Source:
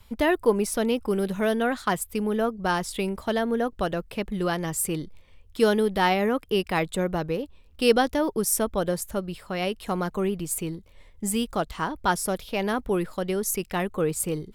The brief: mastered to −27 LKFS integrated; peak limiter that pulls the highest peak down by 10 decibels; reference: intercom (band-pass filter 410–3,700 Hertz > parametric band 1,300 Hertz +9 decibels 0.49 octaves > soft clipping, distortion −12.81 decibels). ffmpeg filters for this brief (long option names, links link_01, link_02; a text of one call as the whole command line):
ffmpeg -i in.wav -af "alimiter=limit=-16.5dB:level=0:latency=1,highpass=410,lowpass=3700,equalizer=frequency=1300:width_type=o:width=0.49:gain=9,asoftclip=threshold=-20.5dB,volume=5dB" out.wav